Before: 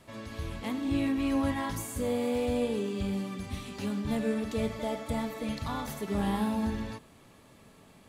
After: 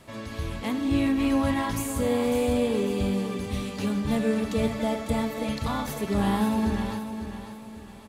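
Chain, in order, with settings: 1.13–2.79 crackle 340/s -56 dBFS; feedback echo 0.549 s, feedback 38%, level -9.5 dB; gain +5 dB

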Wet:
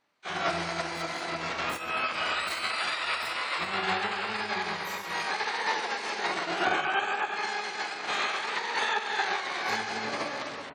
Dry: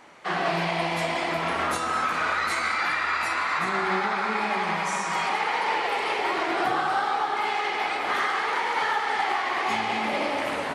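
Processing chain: spectral gate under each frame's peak -25 dB strong; harmoniser -12 st -10 dB, +12 st -1 dB; upward expander 2.5:1, over -36 dBFS; gain -2.5 dB

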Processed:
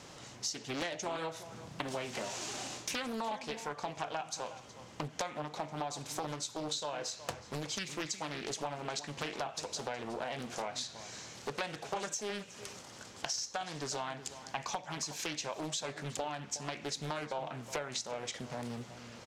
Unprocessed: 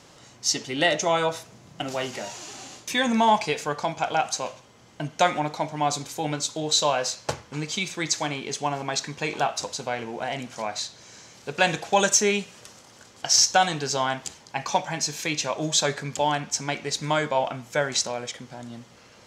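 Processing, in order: compressor 16:1, threshold -34 dBFS, peak gain reduction 20.5 dB; outdoor echo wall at 63 m, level -13 dB; Doppler distortion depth 0.87 ms

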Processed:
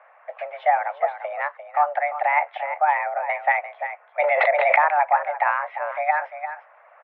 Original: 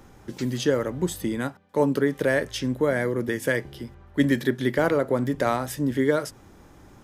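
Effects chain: vibrato 2.2 Hz 41 cents; mistuned SSB +300 Hz 320–2100 Hz; echo 0.347 s -10 dB; harmonic-percussive split percussive +8 dB; 4.22–4.84 backwards sustainer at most 23 dB/s; gain -1.5 dB

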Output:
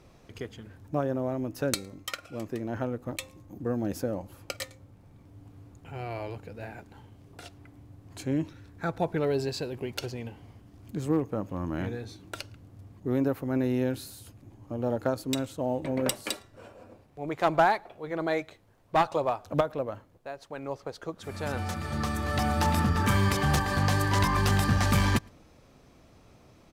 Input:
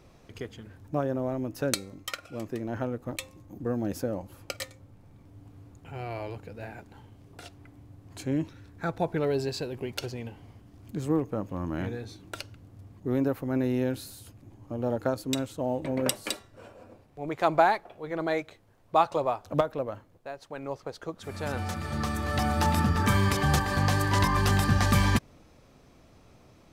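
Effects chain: outdoor echo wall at 19 m, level -30 dB; one-sided clip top -20.5 dBFS

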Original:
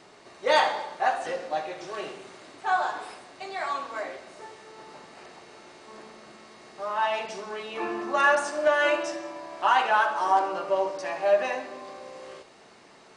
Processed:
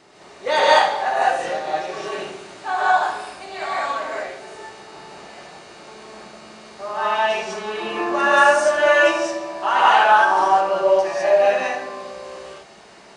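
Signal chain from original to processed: non-linear reverb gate 0.23 s rising, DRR -7 dB

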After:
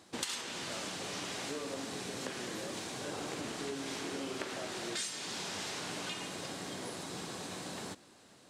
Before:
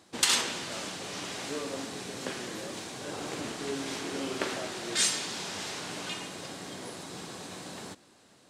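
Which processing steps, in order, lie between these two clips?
compressor 6:1, threshold -36 dBFS, peak gain reduction 15 dB

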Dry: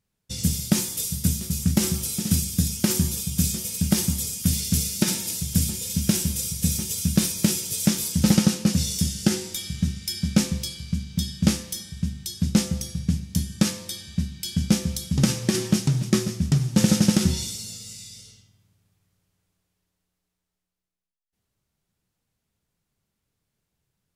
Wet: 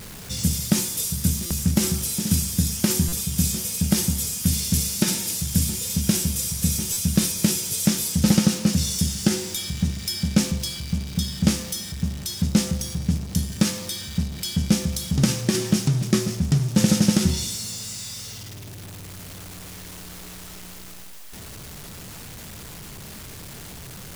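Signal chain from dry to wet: zero-crossing step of -32.5 dBFS; stuck buffer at 1.46/3.08/6.92, samples 256, times 7

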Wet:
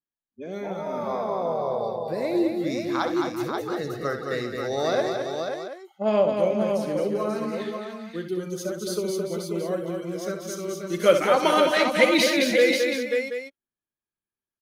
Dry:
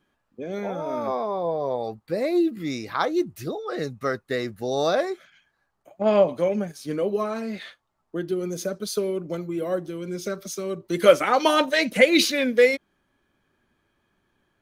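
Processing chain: spectral noise reduction 28 dB; tapped delay 66/216/264/396/536/728 ms -9/-5/-15.5/-12/-5.5/-12 dB; gain -3 dB

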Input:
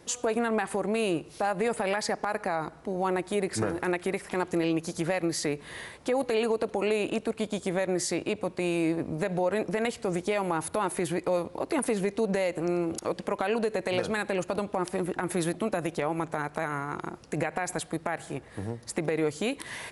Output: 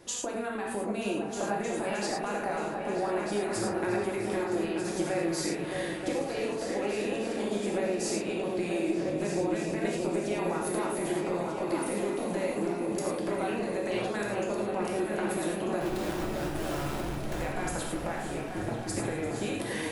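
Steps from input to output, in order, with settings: compressor, threshold -31 dBFS, peak gain reduction 9 dB; 15.81–17.41 Schmitt trigger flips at -42 dBFS; repeats that get brighter 0.311 s, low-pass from 200 Hz, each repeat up 2 oct, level 0 dB; non-linear reverb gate 0.13 s flat, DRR -2 dB; gain -2 dB

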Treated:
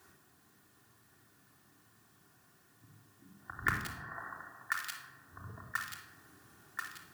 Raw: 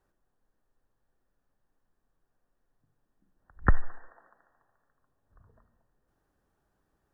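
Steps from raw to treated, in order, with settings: in parallel at -10 dB: bit-crush 4-bit; on the sum: HPF 90 Hz 24 dB/oct; bell 570 Hz -10.5 dB 1.2 oct; thin delay 1.035 s, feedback 52%, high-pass 1600 Hz, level -16 dB; compressor 16:1, threshold -49 dBFS, peak gain reduction 30.5 dB; tilt +1.5 dB/oct; shoebox room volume 2500 m³, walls furnished, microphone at 3.3 m; gain +16.5 dB

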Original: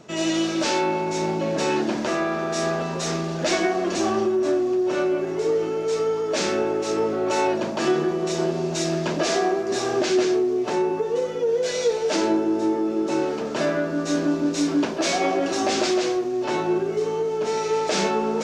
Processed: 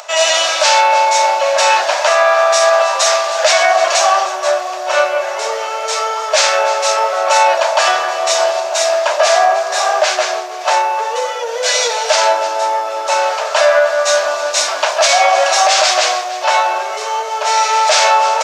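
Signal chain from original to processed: upward compressor, threshold -44 dBFS; Chebyshev high-pass 590 Hz, order 5; echo 0.31 s -16.5 dB; soft clip -6 dBFS, distortion -42 dB; 8.6–10.61 bell 5100 Hz -5.5 dB 2.7 oct; maximiser +18 dB; gain -1 dB

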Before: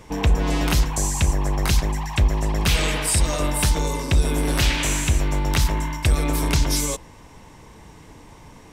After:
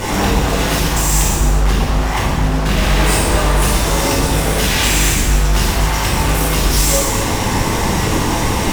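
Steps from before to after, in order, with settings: 1.32–3.62 LPF 1600 Hz 6 dB/oct; compressor, threshold -31 dBFS, peak gain reduction 16.5 dB; fuzz box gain 48 dB, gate -53 dBFS; non-linear reverb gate 0.45 s falling, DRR -7.5 dB; gain -7 dB

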